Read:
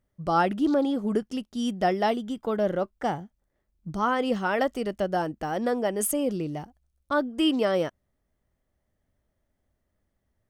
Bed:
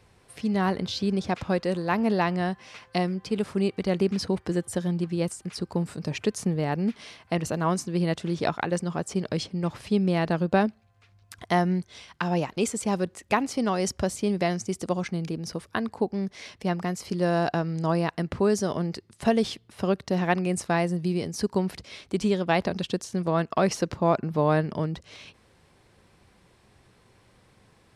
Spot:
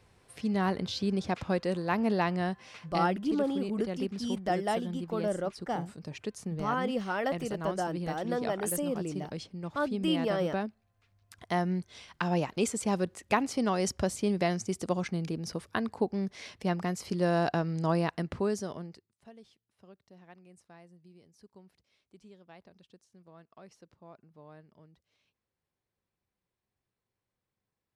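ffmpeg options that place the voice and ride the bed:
-filter_complex "[0:a]adelay=2650,volume=0.501[s0];[1:a]volume=1.58,afade=t=out:st=2.72:d=0.48:silence=0.446684,afade=t=in:st=11.09:d=1.09:silence=0.398107,afade=t=out:st=18.01:d=1.12:silence=0.0446684[s1];[s0][s1]amix=inputs=2:normalize=0"

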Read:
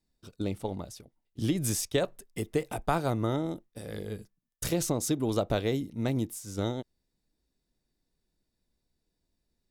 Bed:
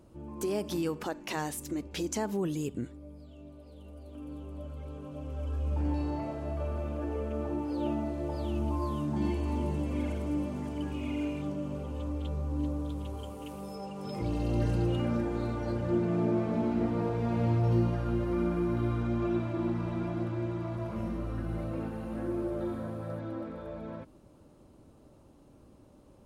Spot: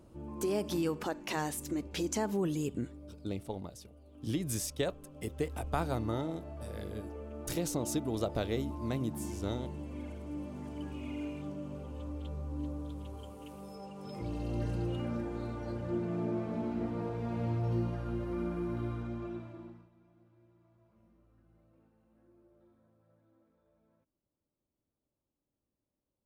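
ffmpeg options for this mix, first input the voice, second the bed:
-filter_complex "[0:a]adelay=2850,volume=0.531[s0];[1:a]volume=1.5,afade=t=out:st=2.82:d=0.83:silence=0.334965,afade=t=in:st=10.23:d=0.5:silence=0.630957,afade=t=out:st=18.81:d=1.08:silence=0.0501187[s1];[s0][s1]amix=inputs=2:normalize=0"

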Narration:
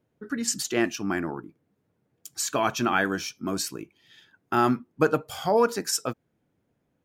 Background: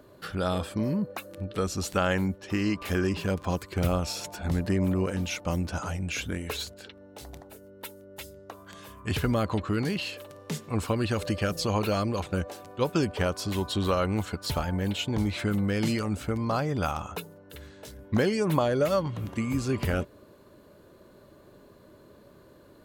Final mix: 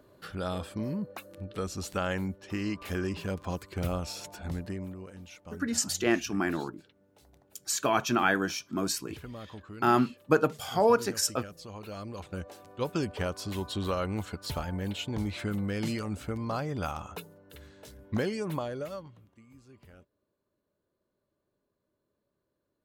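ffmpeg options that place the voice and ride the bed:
-filter_complex "[0:a]adelay=5300,volume=0.841[s0];[1:a]volume=2.11,afade=t=out:st=4.36:d=0.61:silence=0.266073,afade=t=in:st=11.79:d=1.07:silence=0.251189,afade=t=out:st=18.14:d=1.12:silence=0.0749894[s1];[s0][s1]amix=inputs=2:normalize=0"

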